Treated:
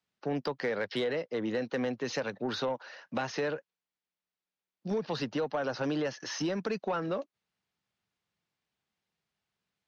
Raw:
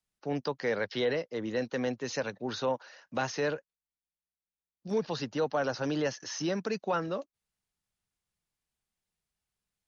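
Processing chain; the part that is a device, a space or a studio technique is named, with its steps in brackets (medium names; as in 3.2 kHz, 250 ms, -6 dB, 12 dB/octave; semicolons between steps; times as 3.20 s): AM radio (band-pass 120–4400 Hz; compression 5:1, threshold -33 dBFS, peak gain reduction 8 dB; saturation -27.5 dBFS, distortion -22 dB); trim +5.5 dB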